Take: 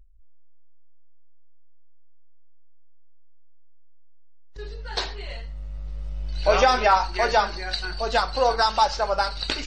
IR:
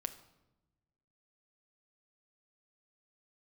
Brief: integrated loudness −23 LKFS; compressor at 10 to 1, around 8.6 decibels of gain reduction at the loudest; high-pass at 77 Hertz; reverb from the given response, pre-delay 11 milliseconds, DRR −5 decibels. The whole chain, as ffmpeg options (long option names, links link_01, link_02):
-filter_complex "[0:a]highpass=77,acompressor=threshold=-22dB:ratio=10,asplit=2[link_01][link_02];[1:a]atrim=start_sample=2205,adelay=11[link_03];[link_02][link_03]afir=irnorm=-1:irlink=0,volume=6dB[link_04];[link_01][link_04]amix=inputs=2:normalize=0,volume=-0.5dB"